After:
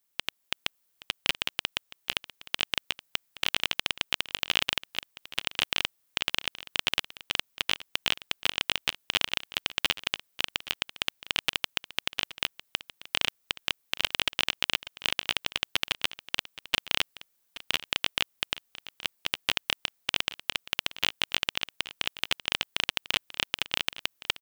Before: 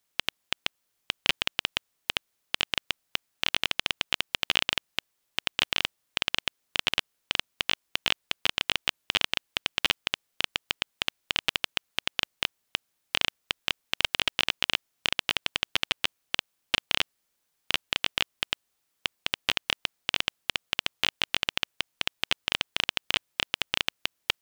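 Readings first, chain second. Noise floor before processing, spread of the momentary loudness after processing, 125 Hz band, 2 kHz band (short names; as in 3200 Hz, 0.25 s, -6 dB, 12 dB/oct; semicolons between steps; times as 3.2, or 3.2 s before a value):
-77 dBFS, 7 LU, -1.5 dB, -1.0 dB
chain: high shelf 11000 Hz +10 dB; AGC; on a send: echo 0.823 s -17 dB; on the sum: gain -4.5 dB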